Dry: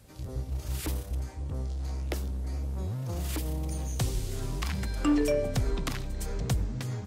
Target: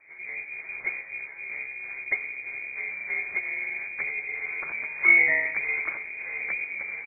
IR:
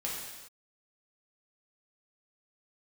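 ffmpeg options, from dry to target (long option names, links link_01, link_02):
-filter_complex "[0:a]equalizer=frequency=350:width_type=o:width=0.36:gain=14,acrossover=split=1600[link_01][link_02];[link_01]acrusher=samples=18:mix=1:aa=0.000001[link_03];[link_03][link_02]amix=inputs=2:normalize=0,asplit=3[link_04][link_05][link_06];[link_05]asetrate=37084,aresample=44100,atempo=1.18921,volume=-10dB[link_07];[link_06]asetrate=52444,aresample=44100,atempo=0.840896,volume=-7dB[link_08];[link_04][link_07][link_08]amix=inputs=3:normalize=0,lowshelf=frequency=140:width_type=q:width=1.5:gain=-7,lowpass=frequency=2100:width_type=q:width=0.5098,lowpass=frequency=2100:width_type=q:width=0.6013,lowpass=frequency=2100:width_type=q:width=0.9,lowpass=frequency=2100:width_type=q:width=2.563,afreqshift=-2500"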